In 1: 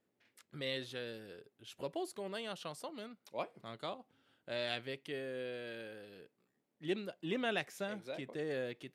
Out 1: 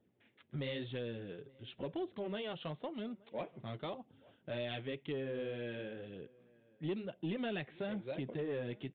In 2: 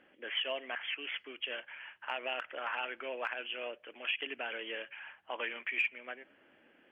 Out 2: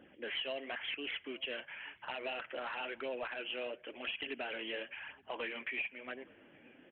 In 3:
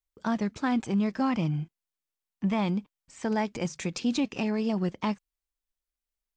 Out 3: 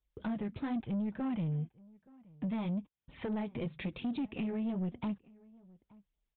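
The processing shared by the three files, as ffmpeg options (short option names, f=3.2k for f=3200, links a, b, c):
-filter_complex "[0:a]flanger=delay=0.2:depth=7.8:regen=-30:speed=0.97:shape=sinusoidal,lowshelf=f=250:g=10.5,acompressor=threshold=-41dB:ratio=2.5,highpass=40,aresample=8000,asoftclip=type=tanh:threshold=-36dB,aresample=44100,equalizer=f=1.3k:w=1.6:g=-3.5,asplit=2[a][b];[b]adelay=874.6,volume=-24dB,highshelf=f=4k:g=-19.7[c];[a][c]amix=inputs=2:normalize=0,volume=6dB"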